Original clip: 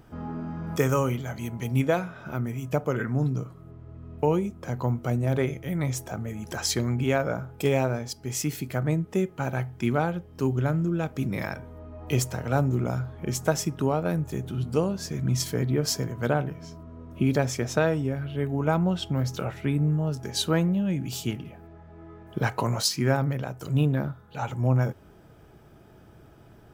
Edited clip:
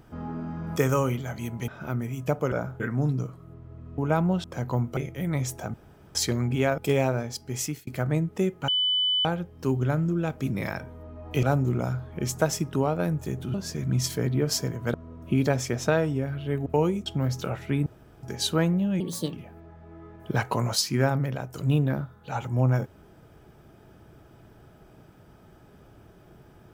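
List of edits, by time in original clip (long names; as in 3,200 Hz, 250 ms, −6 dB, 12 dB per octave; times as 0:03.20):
0:01.68–0:02.13: remove
0:04.15–0:04.55: swap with 0:18.55–0:19.01
0:05.08–0:05.45: remove
0:06.22–0:06.63: fill with room tone
0:07.26–0:07.54: move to 0:02.97
0:08.37–0:08.63: fade out
0:09.44–0:10.01: beep over 3,000 Hz −21 dBFS
0:12.19–0:12.49: remove
0:14.60–0:14.90: remove
0:16.30–0:16.83: remove
0:19.81–0:20.18: fill with room tone
0:20.95–0:21.40: play speed 136%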